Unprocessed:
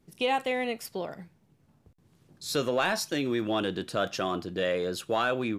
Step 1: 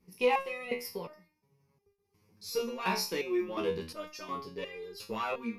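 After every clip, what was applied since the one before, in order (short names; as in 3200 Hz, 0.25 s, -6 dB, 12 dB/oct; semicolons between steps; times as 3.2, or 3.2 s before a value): added harmonics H 4 -26 dB, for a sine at -13.5 dBFS; ripple EQ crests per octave 0.84, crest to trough 12 dB; stepped resonator 2.8 Hz 62–400 Hz; gain +4 dB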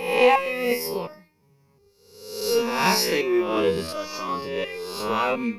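spectral swells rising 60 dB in 0.84 s; gain +8.5 dB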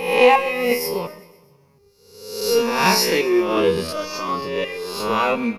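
feedback echo 0.126 s, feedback 58%, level -19.5 dB; gain +4 dB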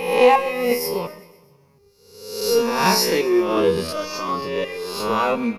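dynamic EQ 2500 Hz, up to -5 dB, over -33 dBFS, Q 1.5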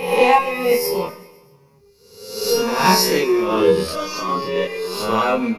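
doubler 27 ms -2 dB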